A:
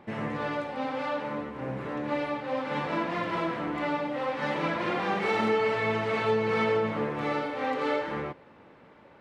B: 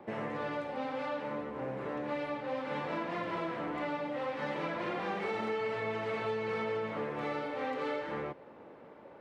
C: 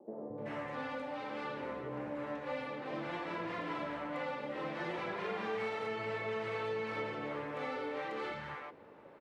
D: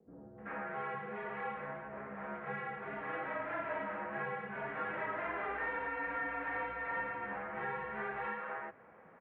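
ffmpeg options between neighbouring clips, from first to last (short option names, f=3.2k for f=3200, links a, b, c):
-filter_complex "[0:a]equalizer=f=500:t=o:w=2.5:g=10.5,acrossover=split=190|400|1400[a][b][c][d];[a]acompressor=threshold=-39dB:ratio=4[e];[b]acompressor=threshold=-40dB:ratio=4[f];[c]acompressor=threshold=-33dB:ratio=4[g];[d]acompressor=threshold=-34dB:ratio=4[h];[e][f][g][h]amix=inputs=4:normalize=0,volume=-6.5dB"
-filter_complex "[0:a]acrossover=split=210|670[a][b][c];[a]adelay=220[d];[c]adelay=380[e];[d][b][e]amix=inputs=3:normalize=0,volume=-1.5dB"
-af "highpass=f=370:t=q:w=0.5412,highpass=f=370:t=q:w=1.307,lowpass=f=2.5k:t=q:w=0.5176,lowpass=f=2.5k:t=q:w=0.7071,lowpass=f=2.5k:t=q:w=1.932,afreqshift=-380,highpass=f=180:p=1,aemphasis=mode=production:type=riaa,volume=4.5dB"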